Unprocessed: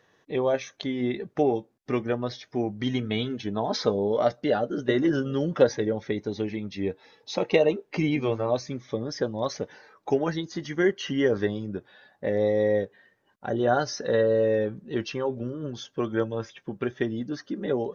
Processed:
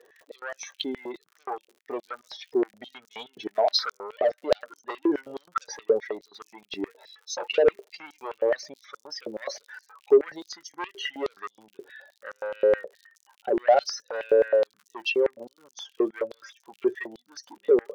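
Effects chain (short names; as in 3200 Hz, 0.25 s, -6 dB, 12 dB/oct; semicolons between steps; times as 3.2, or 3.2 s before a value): spectral contrast raised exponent 1.6; crackle 79/s -44 dBFS; soft clip -21.5 dBFS, distortion -12 dB; stepped high-pass 9.5 Hz 410–6000 Hz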